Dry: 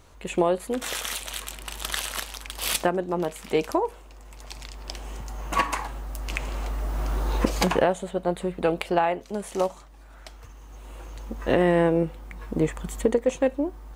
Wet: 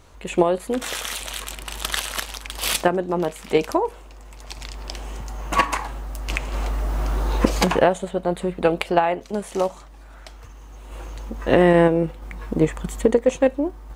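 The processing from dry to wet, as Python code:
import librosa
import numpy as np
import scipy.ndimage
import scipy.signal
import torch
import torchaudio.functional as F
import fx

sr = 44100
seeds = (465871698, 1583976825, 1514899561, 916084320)

p1 = fx.high_shelf(x, sr, hz=11000.0, db=-4.0)
p2 = fx.level_steps(p1, sr, step_db=10)
p3 = p1 + (p2 * 10.0 ** (2.0 / 20.0))
y = p3 * 10.0 ** (-1.0 / 20.0)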